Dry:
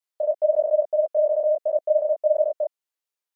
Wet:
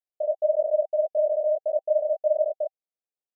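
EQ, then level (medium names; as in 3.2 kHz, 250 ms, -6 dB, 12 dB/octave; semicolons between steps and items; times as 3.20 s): high-pass 490 Hz 6 dB/octave; Chebyshev low-pass 780 Hz, order 8; 0.0 dB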